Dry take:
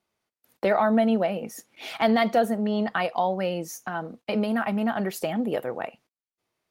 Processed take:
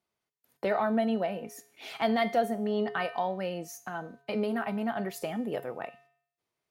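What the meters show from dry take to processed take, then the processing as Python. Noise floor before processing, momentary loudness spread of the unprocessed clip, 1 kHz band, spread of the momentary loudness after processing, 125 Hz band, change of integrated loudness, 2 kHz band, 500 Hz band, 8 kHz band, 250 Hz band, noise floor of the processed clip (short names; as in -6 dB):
under -85 dBFS, 13 LU, -5.5 dB, 12 LU, -6.5 dB, -5.5 dB, -5.5 dB, -5.5 dB, -6.0 dB, -6.5 dB, under -85 dBFS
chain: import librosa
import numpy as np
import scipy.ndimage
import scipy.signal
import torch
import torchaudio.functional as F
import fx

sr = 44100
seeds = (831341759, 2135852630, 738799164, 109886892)

y = fx.comb_fb(x, sr, f0_hz=140.0, decay_s=0.61, harmonics='odd', damping=0.0, mix_pct=70)
y = F.gain(torch.from_numpy(y), 3.5).numpy()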